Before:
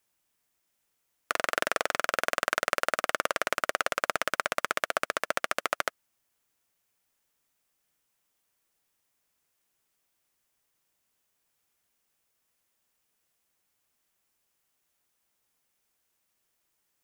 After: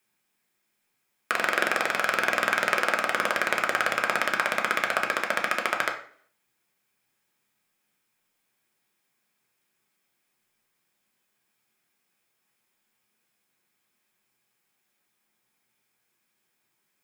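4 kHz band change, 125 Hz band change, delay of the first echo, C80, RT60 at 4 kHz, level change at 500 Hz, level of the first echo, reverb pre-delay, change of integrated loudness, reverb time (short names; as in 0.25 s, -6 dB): +2.5 dB, +5.0 dB, none, 13.5 dB, 0.50 s, +2.0 dB, none, 3 ms, +4.5 dB, 0.55 s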